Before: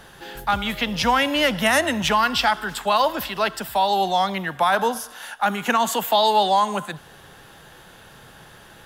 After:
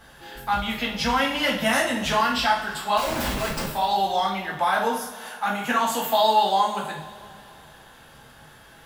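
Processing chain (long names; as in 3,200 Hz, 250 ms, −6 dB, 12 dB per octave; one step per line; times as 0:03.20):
0:02.97–0:03.66: comparator with hysteresis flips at −30.5 dBFS
coupled-rooms reverb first 0.45 s, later 2.8 s, from −19 dB, DRR −4.5 dB
level −8.5 dB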